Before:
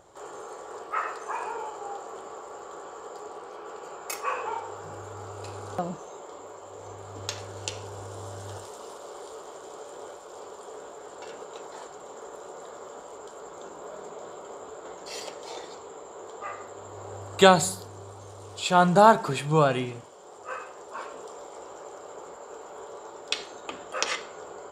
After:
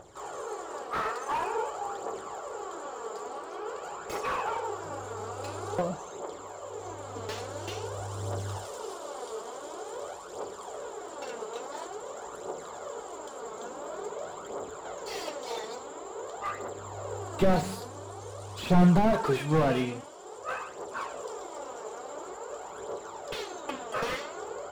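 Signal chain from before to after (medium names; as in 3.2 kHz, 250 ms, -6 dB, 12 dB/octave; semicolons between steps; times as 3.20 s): phaser 0.48 Hz, delay 4.7 ms, feedback 51%; slew-rate limiter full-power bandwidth 40 Hz; trim +1.5 dB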